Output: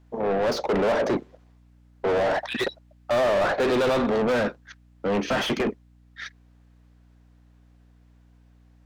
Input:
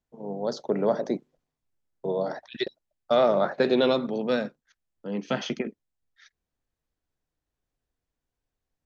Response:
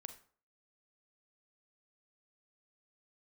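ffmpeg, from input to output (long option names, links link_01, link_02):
-filter_complex "[0:a]asplit=2[link_01][link_02];[link_02]highpass=frequency=720:poles=1,volume=35dB,asoftclip=type=tanh:threshold=-10dB[link_03];[link_01][link_03]amix=inputs=2:normalize=0,lowpass=frequency=1800:poles=1,volume=-6dB,aeval=exprs='val(0)+0.00355*(sin(2*PI*60*n/s)+sin(2*PI*2*60*n/s)/2+sin(2*PI*3*60*n/s)/3+sin(2*PI*4*60*n/s)/4+sin(2*PI*5*60*n/s)/5)':channel_layout=same,volume=-5dB"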